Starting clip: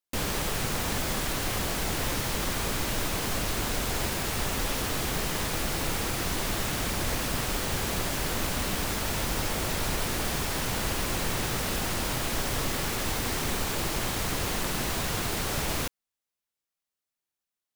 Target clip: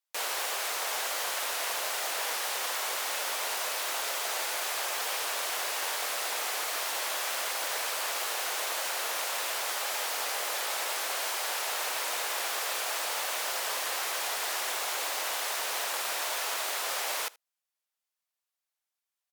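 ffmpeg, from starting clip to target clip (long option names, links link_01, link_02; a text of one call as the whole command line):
ffmpeg -i in.wav -af "highpass=frequency=610:width=0.5412,highpass=frequency=610:width=1.3066,aecho=1:1:71:0.0668,asetrate=40517,aresample=44100" out.wav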